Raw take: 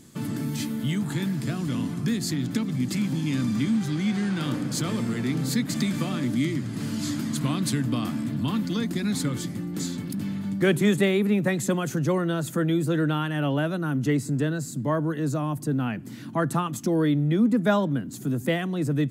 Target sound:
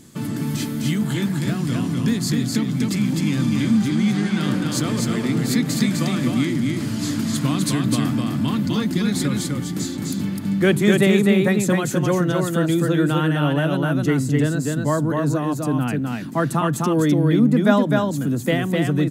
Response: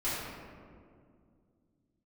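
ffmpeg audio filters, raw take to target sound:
-af "aecho=1:1:255:0.708,volume=1.58"

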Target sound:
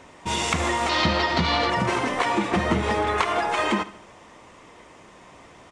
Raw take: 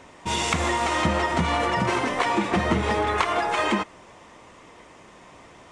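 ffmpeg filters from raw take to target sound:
-filter_complex "[0:a]asettb=1/sr,asplit=3[s0][s1][s2];[s0]atrim=end=0.894[s3];[s1]atrim=start=0.89:end=1.7,asetpts=PTS-STARTPTS,afade=t=in:d=0.004:c=qsin,afade=t=out:st=0.806:d=0.004:c=qsin,lowpass=f=4400:t=q:w=5[s4];[s2]atrim=start=1.696[s5];[s3][s4]acrossfade=d=0.004:c1=hsin:c2=qsin[s6];[s6][s5]acrossfade=d=0.004:c1=qsin:c2=hsin,asplit=2[s7][s8];[s8]aecho=0:1:72|144|216|288:0.133|0.0653|0.032|0.0157[s9];[s7][s9]amix=inputs=2:normalize=0"

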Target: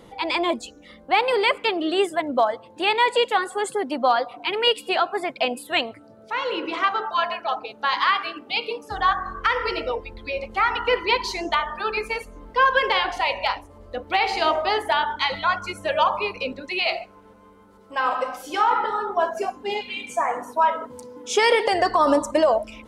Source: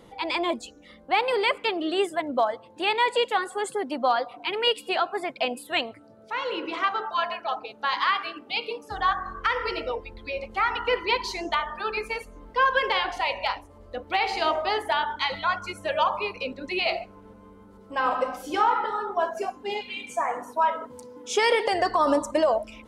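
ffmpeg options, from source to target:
-filter_complex "[0:a]asettb=1/sr,asplit=3[s0][s1][s2];[s0]atrim=end=16.614[s3];[s1]atrim=start=16.61:end=18.71,asetpts=PTS-STARTPTS,afade=t=in:d=0.004:c=qsin,afade=t=out:st=2.096:d=0.004:c=qsin,lowshelf=f=440:g=-9.5[s4];[s2]atrim=start=18.706[s5];[s3][s4]acrossfade=d=0.004:c1=hsin:c2=qsin[s6];[s6][s5]acrossfade=d=0.004:c1=qsin:c2=hsin,volume=1.5"

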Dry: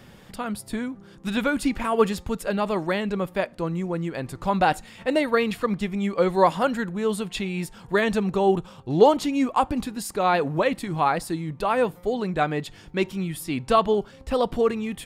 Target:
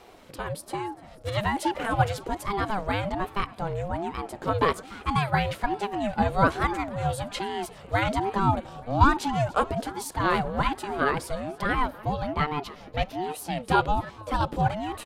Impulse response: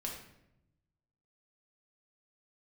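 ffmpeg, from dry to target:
-filter_complex "[0:a]asettb=1/sr,asplit=3[s0][s1][s2];[s0]atrim=end=11.724[s3];[s1]atrim=start=11.72:end=13.24,asetpts=PTS-STARTPTS,afade=t=in:d=0.004:c=qsin,afade=t=out:st=1.516:d=0.004:c=qsin,equalizer=f=7900:w=4.6:g=-14.5[s4];[s2]atrim=start=13.236[s5];[s3][s4]acrossfade=d=0.004:c1=hsin:c2=qsin[s6];[s6][s5]acrossfade=d=0.004:c1=qsin:c2=hsin,asplit=2[s7][s8];[s8]asplit=5[s9][s10][s11][s12][s13];[s9]adelay=291,afreqshift=61,volume=0.1[s14];[s10]adelay=582,afreqshift=122,volume=0.0569[s15];[s11]adelay=873,afreqshift=183,volume=0.0324[s16];[s12]adelay=1164,afreqshift=244,volume=0.0186[s17];[s13]adelay=1455,afreqshift=305,volume=0.0106[s18];[s14][s15][s16][s17][s18]amix=inputs=5:normalize=0[s19];[s7][s19]amix=inputs=2:normalize=0,aeval=exprs='val(0)*sin(2*PI*450*n/s+450*0.35/1.2*sin(2*PI*1.2*n/s))':c=same"

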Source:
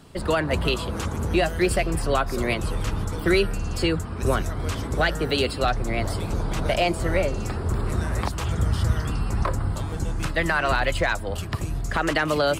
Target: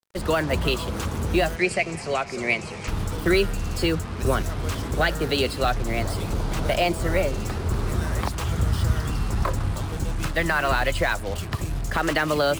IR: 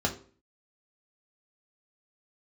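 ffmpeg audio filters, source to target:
-filter_complex "[0:a]acrusher=bits=5:mix=0:aa=0.5,asplit=3[s0][s1][s2];[s0]afade=t=out:st=1.55:d=0.02[s3];[s1]highpass=170,equalizer=f=290:t=q:w=4:g=-9,equalizer=f=510:t=q:w=4:g=-3,equalizer=f=1100:t=q:w=4:g=-5,equalizer=f=1500:t=q:w=4:g=-5,equalizer=f=2300:t=q:w=4:g=9,equalizer=f=3500:t=q:w=4:g=-7,lowpass=f=8100:w=0.5412,lowpass=f=8100:w=1.3066,afade=t=in:st=1.55:d=0.02,afade=t=out:st=2.87:d=0.02[s4];[s2]afade=t=in:st=2.87:d=0.02[s5];[s3][s4][s5]amix=inputs=3:normalize=0"

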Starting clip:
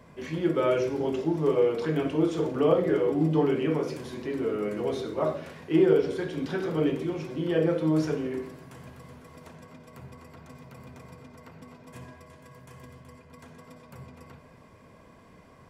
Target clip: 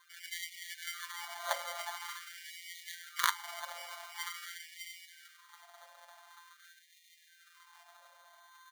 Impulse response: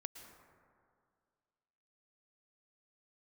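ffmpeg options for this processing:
-filter_complex "[0:a]highpass=f=100:p=1,asplit=2[s0][s1];[s1]aemphasis=mode=reproduction:type=riaa[s2];[1:a]atrim=start_sample=2205,lowpass=3500,adelay=130[s3];[s2][s3]afir=irnorm=-1:irlink=0,volume=0.237[s4];[s0][s4]amix=inputs=2:normalize=0,afftfilt=real='hypot(re,im)*cos(PI*b)':imag='0':win_size=1024:overlap=0.75,atempo=1.8,aecho=1:1:295|410|595:0.501|0.106|0.355,aeval=exprs='(mod(5.31*val(0)+1,2)-1)/5.31':c=same,acrossover=split=490|3000[s5][s6][s7];[s5]acompressor=threshold=0.0112:ratio=5[s8];[s8][s6][s7]amix=inputs=3:normalize=0,flanger=delay=9.8:depth=1.5:regen=65:speed=0.2:shape=triangular,highshelf=f=4100:g=9,acrusher=samples=17:mix=1:aa=0.000001,afftfilt=real='re*gte(b*sr/1024,530*pow(1800/530,0.5+0.5*sin(2*PI*0.46*pts/sr)))':imag='im*gte(b*sr/1024,530*pow(1800/530,0.5+0.5*sin(2*PI*0.46*pts/sr)))':win_size=1024:overlap=0.75,volume=1.41"

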